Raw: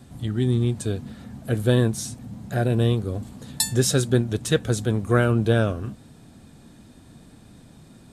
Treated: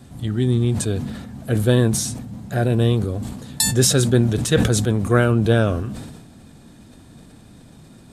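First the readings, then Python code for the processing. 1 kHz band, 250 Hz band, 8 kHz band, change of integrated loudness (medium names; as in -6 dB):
+3.5 dB, +4.0 dB, +6.5 dB, +4.0 dB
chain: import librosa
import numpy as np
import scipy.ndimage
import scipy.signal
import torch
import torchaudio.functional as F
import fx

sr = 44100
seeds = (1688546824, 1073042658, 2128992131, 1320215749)

y = fx.sustainer(x, sr, db_per_s=45.0)
y = F.gain(torch.from_numpy(y), 2.5).numpy()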